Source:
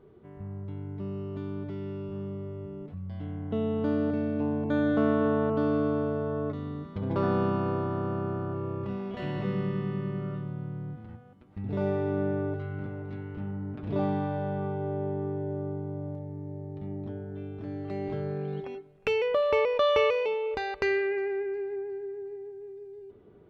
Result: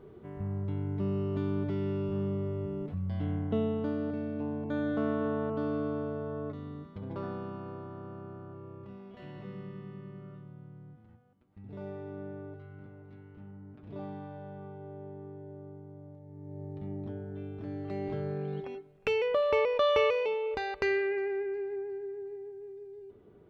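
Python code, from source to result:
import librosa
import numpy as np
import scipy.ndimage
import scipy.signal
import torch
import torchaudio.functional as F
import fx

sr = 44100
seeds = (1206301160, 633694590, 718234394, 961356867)

y = fx.gain(x, sr, db=fx.line((3.34, 4.0), (3.94, -6.0), (6.81, -6.0), (7.41, -13.0), (16.2, -13.0), (16.63, -2.0)))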